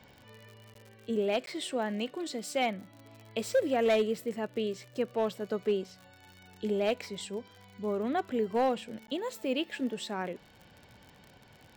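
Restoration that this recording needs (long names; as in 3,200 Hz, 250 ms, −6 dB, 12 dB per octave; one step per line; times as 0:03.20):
clipped peaks rebuilt −20.5 dBFS
click removal
repair the gap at 0:00.74/0:01.46/0:09.07, 12 ms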